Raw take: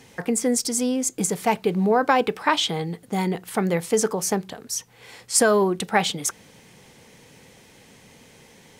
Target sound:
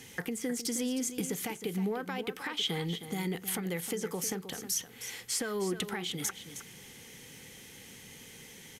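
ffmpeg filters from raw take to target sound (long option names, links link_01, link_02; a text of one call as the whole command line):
ffmpeg -i in.wav -filter_complex "[0:a]acrossover=split=3900[link_01][link_02];[link_02]acompressor=threshold=-34dB:ratio=4:attack=1:release=60[link_03];[link_01][link_03]amix=inputs=2:normalize=0,equalizer=frequency=9700:width=0.94:gain=4,asplit=2[link_04][link_05];[link_05]aeval=exprs='sgn(val(0))*max(abs(val(0))-0.0158,0)':channel_layout=same,volume=-12dB[link_06];[link_04][link_06]amix=inputs=2:normalize=0,acompressor=threshold=-26dB:ratio=4,alimiter=limit=-21dB:level=0:latency=1:release=268,equalizer=frequency=630:width_type=o:width=0.33:gain=-11,equalizer=frequency=1000:width_type=o:width=0.33:gain=-6,equalizer=frequency=2000:width_type=o:width=0.33:gain=4,equalizer=frequency=3150:width_type=o:width=0.33:gain=6,equalizer=frequency=6300:width_type=o:width=0.33:gain=4,equalizer=frequency=12500:width_type=o:width=0.33:gain=11,asplit=2[link_07][link_08];[link_08]aecho=0:1:313:0.282[link_09];[link_07][link_09]amix=inputs=2:normalize=0,volume=-2.5dB" out.wav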